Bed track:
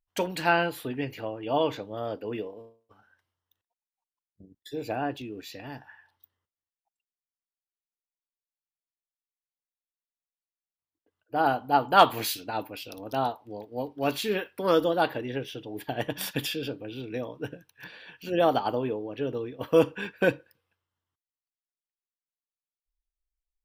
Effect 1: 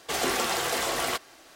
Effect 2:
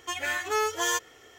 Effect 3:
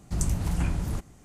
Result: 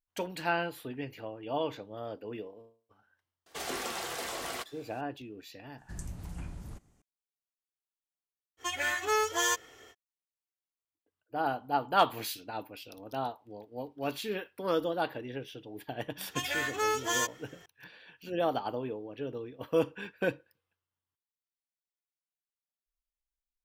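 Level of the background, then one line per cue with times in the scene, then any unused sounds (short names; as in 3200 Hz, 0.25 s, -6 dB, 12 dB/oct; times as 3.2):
bed track -7 dB
3.46 add 1 -9.5 dB
5.78 add 3 -14.5 dB
8.57 add 2 -1.5 dB, fades 0.05 s
16.28 add 2 -3 dB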